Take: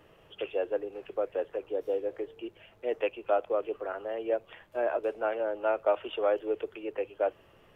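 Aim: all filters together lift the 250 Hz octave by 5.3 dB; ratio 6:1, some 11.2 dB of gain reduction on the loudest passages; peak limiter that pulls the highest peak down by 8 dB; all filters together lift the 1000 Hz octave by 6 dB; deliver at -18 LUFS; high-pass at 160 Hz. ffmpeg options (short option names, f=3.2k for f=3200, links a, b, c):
-af "highpass=160,equalizer=f=250:t=o:g=8,equalizer=f=1k:t=o:g=8.5,acompressor=threshold=-29dB:ratio=6,volume=19.5dB,alimiter=limit=-7dB:level=0:latency=1"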